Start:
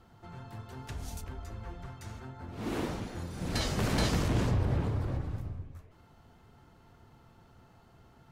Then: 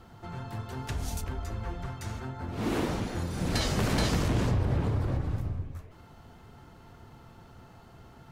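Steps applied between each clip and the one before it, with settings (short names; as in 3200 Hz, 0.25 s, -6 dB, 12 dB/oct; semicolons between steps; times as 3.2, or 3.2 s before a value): compressor 2:1, threshold -34 dBFS, peak gain reduction 6 dB; gain +7 dB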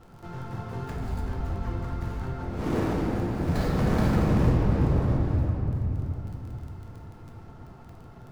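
median filter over 15 samples; crackle 16/s -40 dBFS; shoebox room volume 160 m³, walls hard, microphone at 0.51 m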